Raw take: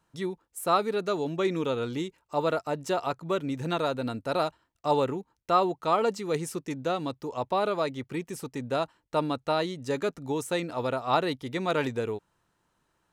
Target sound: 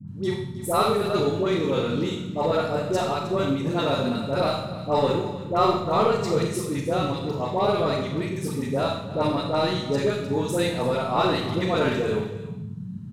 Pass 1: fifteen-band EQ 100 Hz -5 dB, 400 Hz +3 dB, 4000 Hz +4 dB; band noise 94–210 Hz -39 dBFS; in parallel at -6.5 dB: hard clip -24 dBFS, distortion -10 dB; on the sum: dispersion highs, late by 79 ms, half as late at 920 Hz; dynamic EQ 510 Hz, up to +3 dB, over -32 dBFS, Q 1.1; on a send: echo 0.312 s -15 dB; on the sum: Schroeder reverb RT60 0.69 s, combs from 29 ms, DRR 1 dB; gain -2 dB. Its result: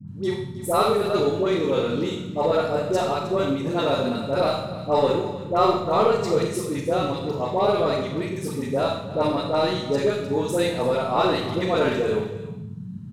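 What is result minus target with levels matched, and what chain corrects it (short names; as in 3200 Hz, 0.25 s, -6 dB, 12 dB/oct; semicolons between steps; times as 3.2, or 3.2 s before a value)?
125 Hz band -3.0 dB
fifteen-band EQ 100 Hz -5 dB, 400 Hz +3 dB, 4000 Hz +4 dB; band noise 94–210 Hz -39 dBFS; in parallel at -6.5 dB: hard clip -24 dBFS, distortion -10 dB; on the sum: dispersion highs, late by 79 ms, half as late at 920 Hz; dynamic EQ 140 Hz, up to +3 dB, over -32 dBFS, Q 1.1; on a send: echo 0.312 s -15 dB; on the sum: Schroeder reverb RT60 0.69 s, combs from 29 ms, DRR 1 dB; gain -2 dB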